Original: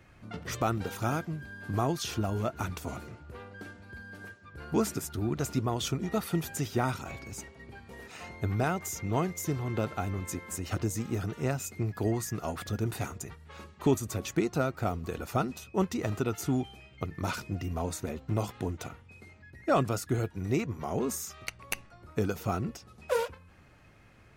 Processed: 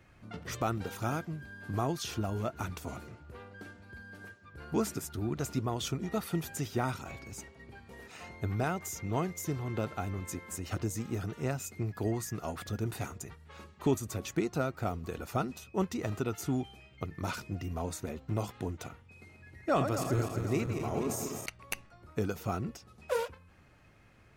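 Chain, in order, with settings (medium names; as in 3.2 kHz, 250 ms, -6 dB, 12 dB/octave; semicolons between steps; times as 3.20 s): 19.04–21.46 s: backward echo that repeats 125 ms, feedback 77%, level -7 dB; trim -3 dB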